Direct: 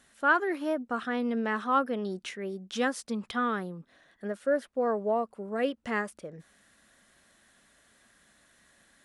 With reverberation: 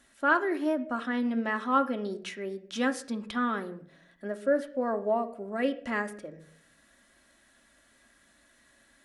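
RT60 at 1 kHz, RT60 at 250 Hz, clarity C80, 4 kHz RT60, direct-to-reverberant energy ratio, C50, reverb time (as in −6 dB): 0.55 s, 0.65 s, 18.0 dB, 0.40 s, 5.5 dB, 15.0 dB, 0.60 s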